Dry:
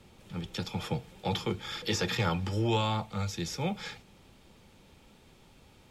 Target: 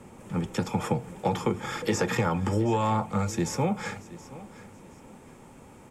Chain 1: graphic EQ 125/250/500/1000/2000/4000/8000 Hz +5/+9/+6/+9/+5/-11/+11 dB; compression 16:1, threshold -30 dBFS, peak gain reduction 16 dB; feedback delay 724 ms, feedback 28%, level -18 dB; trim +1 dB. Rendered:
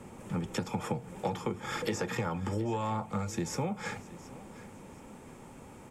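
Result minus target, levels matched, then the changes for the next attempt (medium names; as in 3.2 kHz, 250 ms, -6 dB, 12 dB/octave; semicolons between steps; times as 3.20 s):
compression: peak gain reduction +7.5 dB
change: compression 16:1, threshold -22 dBFS, peak gain reduction 8.5 dB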